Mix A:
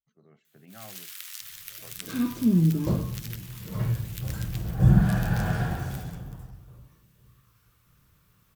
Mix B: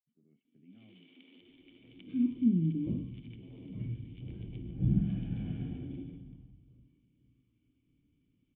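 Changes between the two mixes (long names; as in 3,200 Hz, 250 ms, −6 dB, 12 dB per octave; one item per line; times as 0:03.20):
first sound: remove high-pass filter 1,400 Hz 24 dB per octave
master: add formant resonators in series i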